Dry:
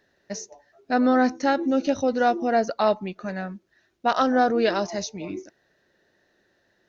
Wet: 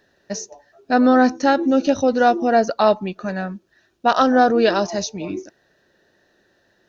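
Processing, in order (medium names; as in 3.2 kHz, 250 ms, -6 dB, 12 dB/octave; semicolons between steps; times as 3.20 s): band-stop 2.1 kHz, Q 7.1; trim +5.5 dB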